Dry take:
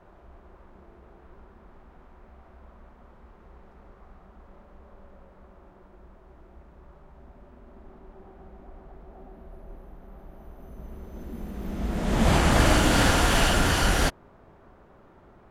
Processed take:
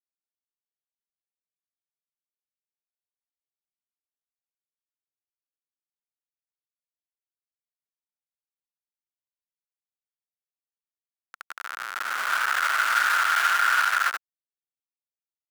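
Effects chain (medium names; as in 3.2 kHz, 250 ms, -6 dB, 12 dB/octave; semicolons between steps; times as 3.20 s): early reflections 20 ms -15 dB, 77 ms -7 dB; Schmitt trigger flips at -27 dBFS; resonant high-pass 1.4 kHz, resonance Q 5.8; trim +2 dB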